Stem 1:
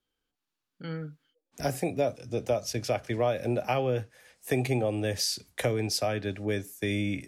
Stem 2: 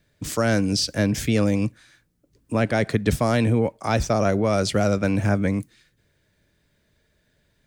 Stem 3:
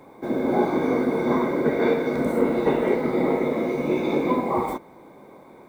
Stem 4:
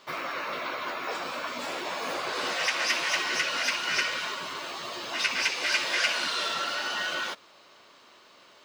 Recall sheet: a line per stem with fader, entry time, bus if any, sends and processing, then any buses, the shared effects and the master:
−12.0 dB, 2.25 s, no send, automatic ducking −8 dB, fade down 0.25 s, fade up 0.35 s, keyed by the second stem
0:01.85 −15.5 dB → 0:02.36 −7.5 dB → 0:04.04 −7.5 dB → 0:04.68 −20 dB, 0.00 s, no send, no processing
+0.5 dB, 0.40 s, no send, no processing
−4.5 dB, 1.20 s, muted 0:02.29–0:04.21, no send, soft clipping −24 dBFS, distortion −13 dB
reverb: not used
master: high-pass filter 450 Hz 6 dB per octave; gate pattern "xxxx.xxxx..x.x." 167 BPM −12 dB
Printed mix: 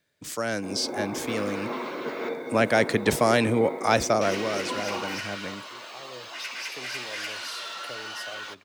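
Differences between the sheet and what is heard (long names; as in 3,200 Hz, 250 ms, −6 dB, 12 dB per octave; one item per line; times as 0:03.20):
stem 2 −15.5 dB → −4.5 dB
stem 3 +0.5 dB → −8.0 dB
master: missing gate pattern "xxxx.xxxx..x.x." 167 BPM −12 dB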